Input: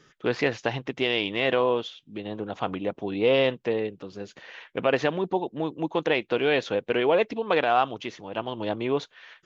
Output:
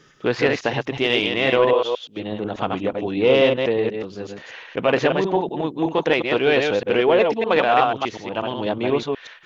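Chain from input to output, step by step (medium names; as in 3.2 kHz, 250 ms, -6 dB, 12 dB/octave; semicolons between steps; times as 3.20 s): chunks repeated in reverse 122 ms, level -4 dB; in parallel at -8 dB: saturation -15 dBFS, distortion -16 dB; 1.73–2.17 s: on the sum: resonant low shelf 340 Hz -10 dB, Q 1.5; trim +2 dB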